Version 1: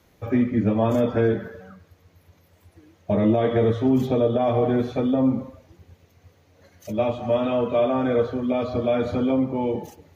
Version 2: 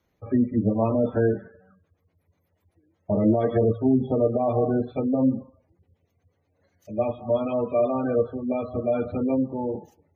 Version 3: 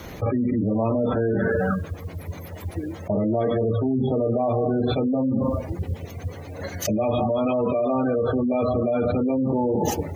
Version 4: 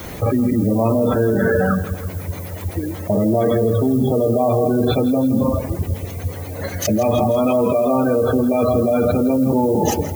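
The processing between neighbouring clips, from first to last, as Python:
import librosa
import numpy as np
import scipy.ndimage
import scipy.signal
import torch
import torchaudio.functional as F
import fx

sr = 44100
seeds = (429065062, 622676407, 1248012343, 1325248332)

y1 = fx.spec_gate(x, sr, threshold_db=-25, keep='strong')
y1 = fx.upward_expand(y1, sr, threshold_db=-42.0, expansion=1.5)
y2 = fx.env_flatten(y1, sr, amount_pct=100)
y2 = F.gain(torch.from_numpy(y2), -5.5).numpy()
y3 = fx.echo_feedback(y2, sr, ms=164, feedback_pct=51, wet_db=-15.0)
y3 = fx.dmg_noise_colour(y3, sr, seeds[0], colour='violet', level_db=-46.0)
y3 = F.gain(torch.from_numpy(y3), 5.5).numpy()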